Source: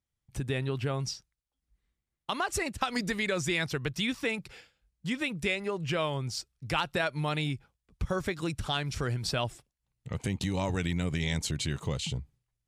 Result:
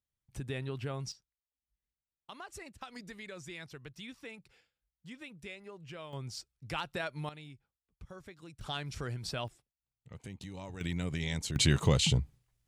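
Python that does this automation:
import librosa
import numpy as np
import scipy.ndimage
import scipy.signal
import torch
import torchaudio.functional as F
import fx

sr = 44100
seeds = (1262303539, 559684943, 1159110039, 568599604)

y = fx.gain(x, sr, db=fx.steps((0.0, -6.5), (1.12, -16.0), (6.13, -7.5), (7.29, -18.5), (8.61, -7.0), (9.48, -14.0), (10.81, -4.5), (11.56, 6.5)))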